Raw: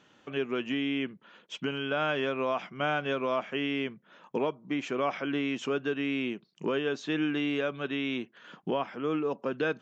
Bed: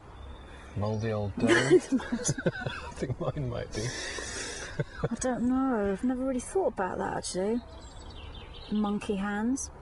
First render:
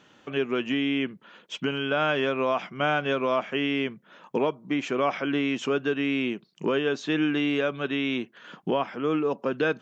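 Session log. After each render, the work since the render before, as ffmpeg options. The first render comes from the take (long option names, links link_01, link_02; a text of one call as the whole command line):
ffmpeg -i in.wav -af "volume=4.5dB" out.wav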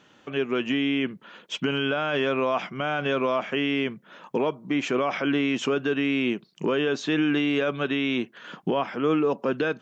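ffmpeg -i in.wav -af "dynaudnorm=framelen=400:gausssize=3:maxgain=4dB,alimiter=limit=-15dB:level=0:latency=1:release=30" out.wav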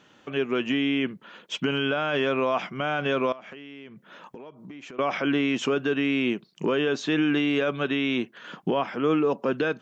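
ffmpeg -i in.wav -filter_complex "[0:a]asettb=1/sr,asplit=3[link_01][link_02][link_03];[link_01]atrim=end=3.324[link_04];[link_02]atrim=start=3.32:end=4.99,asetpts=PTS-STARTPTS,afade=type=in:duration=0.004:curve=qsin,afade=type=out:start_time=1.666:duration=0.004:curve=qsin,acompressor=threshold=-39dB:ratio=10:attack=3.2:release=140:knee=1:detection=peak[link_05];[link_03]atrim=start=4.986[link_06];[link_04][link_05]acrossfade=duration=0.004:curve1=hsin:curve2=qsin[link_07];[link_07][link_06]acrossfade=duration=0.004:curve1=qsin:curve2=hsin" out.wav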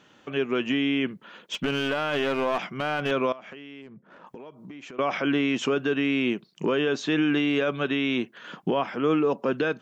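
ffmpeg -i in.wav -filter_complex "[0:a]asettb=1/sr,asplit=3[link_01][link_02][link_03];[link_01]atrim=end=1.534[link_04];[link_02]atrim=start=1.53:end=3.11,asetpts=PTS-STARTPTS,afade=type=in:duration=0.004:curve=qsin,afade=type=out:start_time=1.576:duration=0.004:curve=qsin,aeval=exprs='clip(val(0),-1,0.0531)':channel_layout=same[link_05];[link_03]atrim=start=3.106[link_06];[link_04][link_05]acrossfade=duration=0.004:curve1=hsin:curve2=qsin[link_07];[link_07][link_06]acrossfade=duration=0.004:curve1=qsin:curve2=hsin,asplit=3[link_08][link_09][link_10];[link_08]afade=type=out:start_time=3.81:duration=0.02[link_11];[link_09]adynamicsmooth=sensitivity=6:basefreq=1100,afade=type=in:start_time=3.81:duration=0.02,afade=type=out:start_time=4.26:duration=0.02[link_12];[link_10]afade=type=in:start_time=4.26:duration=0.02[link_13];[link_11][link_12][link_13]amix=inputs=3:normalize=0" out.wav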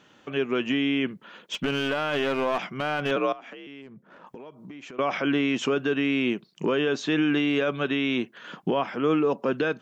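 ffmpeg -i in.wav -filter_complex "[0:a]asettb=1/sr,asplit=3[link_01][link_02][link_03];[link_01]atrim=end=3.164[link_04];[link_02]atrim=start=3.16:end=3.67,asetpts=PTS-STARTPTS,afade=type=in:duration=0.004:curve=qsin,afade=type=out:start_time=0.506:duration=0.004:curve=qsin,afreqshift=52[link_05];[link_03]atrim=start=3.666[link_06];[link_04][link_05]acrossfade=duration=0.004:curve1=hsin:curve2=qsin[link_07];[link_07][link_06]acrossfade=duration=0.004:curve1=qsin:curve2=hsin" out.wav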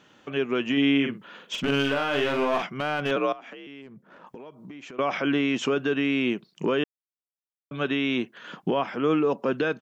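ffmpeg -i in.wav -filter_complex "[0:a]asplit=3[link_01][link_02][link_03];[link_01]afade=type=out:start_time=0.76:duration=0.02[link_04];[link_02]asplit=2[link_05][link_06];[link_06]adelay=43,volume=-4.5dB[link_07];[link_05][link_07]amix=inputs=2:normalize=0,afade=type=in:start_time=0.76:duration=0.02,afade=type=out:start_time=2.65:duration=0.02[link_08];[link_03]afade=type=in:start_time=2.65:duration=0.02[link_09];[link_04][link_08][link_09]amix=inputs=3:normalize=0,asplit=3[link_10][link_11][link_12];[link_10]atrim=end=6.84,asetpts=PTS-STARTPTS,afade=type=out:start_time=6.836:duration=0.004:curve=hsin[link_13];[link_11]atrim=start=6.84:end=7.71,asetpts=PTS-STARTPTS,volume=0[link_14];[link_12]atrim=start=7.71,asetpts=PTS-STARTPTS,afade=type=in:duration=0.004:curve=hsin[link_15];[link_13][link_14][link_15]concat=n=3:v=0:a=1" out.wav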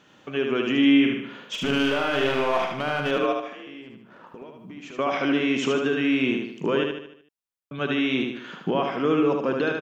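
ffmpeg -i in.wav -af "aecho=1:1:75|150|225|300|375|450:0.631|0.297|0.139|0.0655|0.0308|0.0145" out.wav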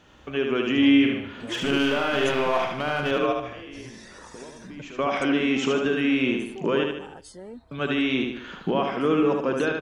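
ffmpeg -i in.wav -i bed.wav -filter_complex "[1:a]volume=-11.5dB[link_01];[0:a][link_01]amix=inputs=2:normalize=0" out.wav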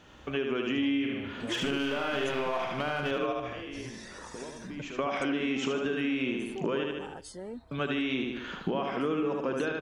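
ffmpeg -i in.wav -af "acompressor=threshold=-28dB:ratio=4" out.wav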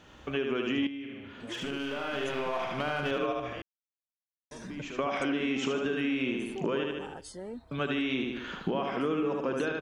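ffmpeg -i in.wav -filter_complex "[0:a]asplit=4[link_01][link_02][link_03][link_04];[link_01]atrim=end=0.87,asetpts=PTS-STARTPTS,afade=type=out:start_time=0.866:duration=0.004:curve=hsin:silence=0.251189[link_05];[link_02]atrim=start=0.87:end=3.62,asetpts=PTS-STARTPTS,afade=type=in:duration=2:silence=0.251189,afade=type=out:start_time=2.746:duration=0.004:curve=hsin[link_06];[link_03]atrim=start=3.62:end=4.51,asetpts=PTS-STARTPTS,volume=0[link_07];[link_04]atrim=start=4.51,asetpts=PTS-STARTPTS,afade=type=in:duration=0.004:curve=hsin[link_08];[link_05][link_06][link_07][link_08]concat=n=4:v=0:a=1" out.wav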